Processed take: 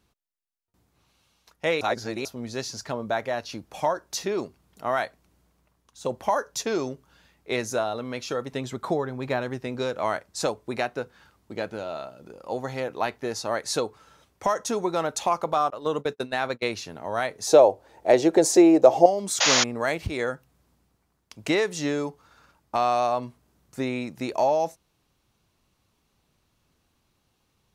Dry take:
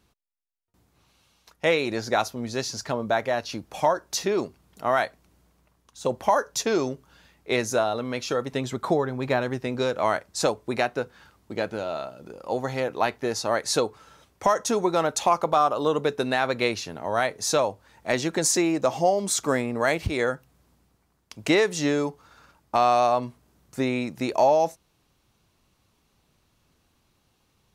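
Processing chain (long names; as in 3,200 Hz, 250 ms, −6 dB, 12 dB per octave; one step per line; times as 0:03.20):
0:01.81–0:02.25: reverse
0:15.70–0:16.63: noise gate −25 dBFS, range −35 dB
0:17.47–0:19.06: flat-topped bell 510 Hz +12 dB
0:19.40–0:19.64: sound drawn into the spectrogram noise 480–7,100 Hz −17 dBFS
level −3 dB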